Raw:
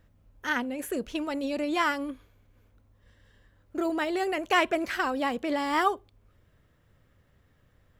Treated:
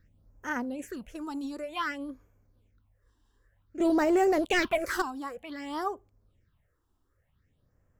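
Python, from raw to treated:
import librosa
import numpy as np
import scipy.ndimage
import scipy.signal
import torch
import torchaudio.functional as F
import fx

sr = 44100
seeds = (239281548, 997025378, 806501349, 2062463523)

y = fx.rider(x, sr, range_db=10, speed_s=2.0)
y = fx.leveller(y, sr, passes=3, at=(3.8, 5.02))
y = fx.phaser_stages(y, sr, stages=6, low_hz=140.0, high_hz=3800.0, hz=0.54, feedback_pct=25)
y = y * librosa.db_to_amplitude(-4.0)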